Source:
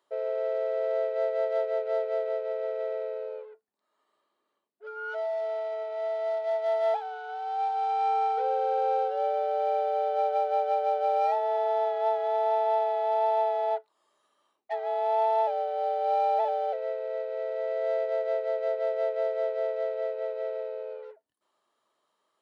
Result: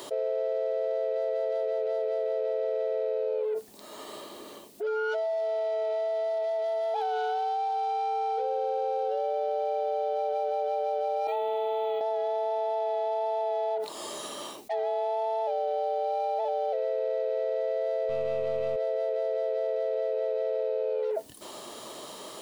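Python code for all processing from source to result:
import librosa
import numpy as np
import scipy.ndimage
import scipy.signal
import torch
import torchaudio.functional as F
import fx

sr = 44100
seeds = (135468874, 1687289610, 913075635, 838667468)

y = fx.chain(x, sr, fx.low_shelf(hz=440.0, db=-10.0),
    fx.fixed_phaser(hz=1100.0, stages=8),
    fx.resample_linear(factor=2), at=(11.27, 12.01))
y = fx.chain(y, sr, fx.halfwave_gain(db=-3.0),
    fx.peak_eq(hz=2700.0, db=7.5, octaves=0.47), at=(18.09, 18.76))
y = fx.peak_eq(y, sr, hz=1400.0, db=-12.5, octaves=1.8)
y = fx.env_flatten(y, sr, amount_pct=100)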